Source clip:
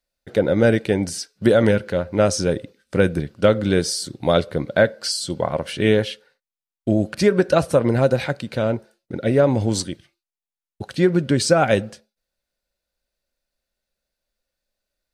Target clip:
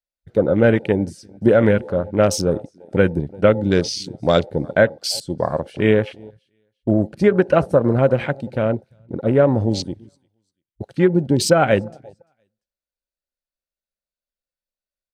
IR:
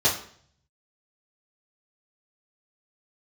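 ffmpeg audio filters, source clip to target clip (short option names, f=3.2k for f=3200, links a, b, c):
-af "aecho=1:1:344|688:0.0708|0.0205,afwtdn=0.0316,volume=1.5dB"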